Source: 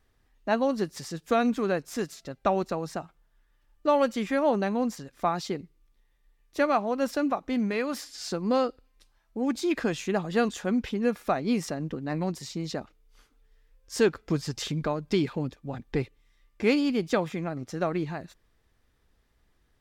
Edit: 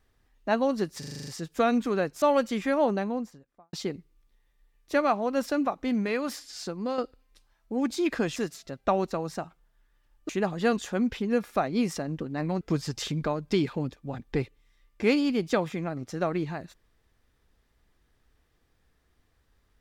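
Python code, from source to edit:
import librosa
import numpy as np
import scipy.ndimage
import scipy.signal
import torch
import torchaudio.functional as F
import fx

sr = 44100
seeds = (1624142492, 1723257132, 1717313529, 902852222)

y = fx.studio_fade_out(x, sr, start_s=4.42, length_s=0.96)
y = fx.edit(y, sr, fx.stutter(start_s=0.99, slice_s=0.04, count=8),
    fx.move(start_s=1.94, length_s=1.93, to_s=10.01),
    fx.fade_out_to(start_s=7.96, length_s=0.67, floor_db=-8.0),
    fx.cut(start_s=12.33, length_s=1.88), tone=tone)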